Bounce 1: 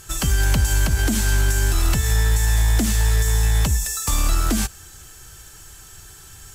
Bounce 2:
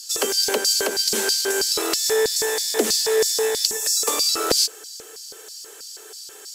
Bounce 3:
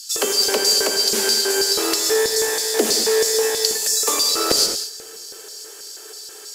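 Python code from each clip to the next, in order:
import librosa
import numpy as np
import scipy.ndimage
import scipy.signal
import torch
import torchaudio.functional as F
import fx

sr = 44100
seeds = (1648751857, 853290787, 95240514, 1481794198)

y1 = scipy.signal.sosfilt(scipy.signal.butter(12, 200.0, 'highpass', fs=sr, output='sos'), x)
y1 = fx.filter_lfo_highpass(y1, sr, shape='square', hz=3.1, low_hz=440.0, high_hz=4700.0, q=7.7)
y1 = y1 * librosa.db_to_amplitude(1.5)
y2 = fx.rev_gated(y1, sr, seeds[0], gate_ms=250, shape='flat', drr_db=4.0)
y2 = y2 * librosa.db_to_amplitude(1.0)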